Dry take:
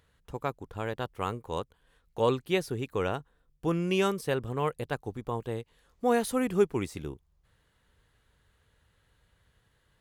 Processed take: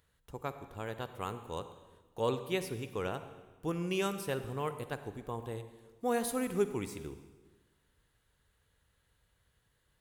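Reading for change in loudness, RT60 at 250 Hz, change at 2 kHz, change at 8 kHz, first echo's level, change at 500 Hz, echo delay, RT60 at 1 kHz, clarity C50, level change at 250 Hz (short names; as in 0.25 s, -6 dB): -6.0 dB, 1.4 s, -5.5 dB, -1.0 dB, none, -6.0 dB, none, 1.3 s, 11.0 dB, -6.0 dB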